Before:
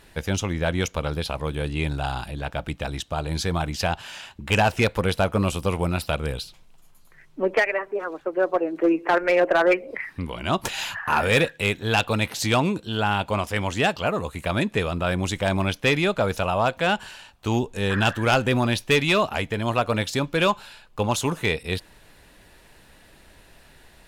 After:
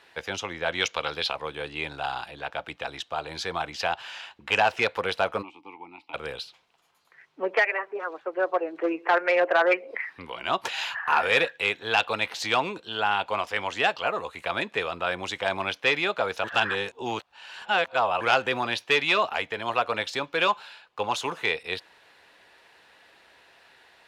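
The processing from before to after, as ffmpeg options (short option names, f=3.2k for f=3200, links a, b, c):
-filter_complex "[0:a]asettb=1/sr,asplit=3[a][b][c];[a]atrim=end=0.724[d];[b]atrim=start=0.72:end=1.32,asetpts=PTS-STARTPTS,afade=t=in:d=0.004:c=qsin,afade=t=out:st=0.596:d=0.004:c=qsin,equalizer=f=3.8k:t=o:w=2.2:g=7.5[e];[c]atrim=start=1.316[f];[d][e]acrossfade=d=0.004:c1=hsin:c2=qsin[g];[g][f]acrossfade=d=0.004:c1=qsin:c2=hsin,asplit=3[h][i][j];[h]afade=t=out:st=5.41:d=0.02[k];[i]asplit=3[l][m][n];[l]bandpass=f=300:t=q:w=8,volume=0dB[o];[m]bandpass=f=870:t=q:w=8,volume=-6dB[p];[n]bandpass=f=2.24k:t=q:w=8,volume=-9dB[q];[o][p][q]amix=inputs=3:normalize=0,afade=t=in:st=5.41:d=0.02,afade=t=out:st=6.13:d=0.02[r];[j]afade=t=in:st=6.13:d=0.02[s];[k][r][s]amix=inputs=3:normalize=0,asplit=3[t][u][v];[t]atrim=end=16.442[w];[u]atrim=start=16.438:end=18.212,asetpts=PTS-STARTPTS,areverse[x];[v]atrim=start=18.208[y];[w][x]acrossfade=d=0.004:c1=hsin:c2=hsin[z];[z][y]acrossfade=d=0.004:c1=hsin:c2=hsin,highpass=80,acrossover=split=430 5300:gain=0.126 1 0.178[aa][ab][ac];[aa][ab][ac]amix=inputs=3:normalize=0,bandreject=f=600:w=12"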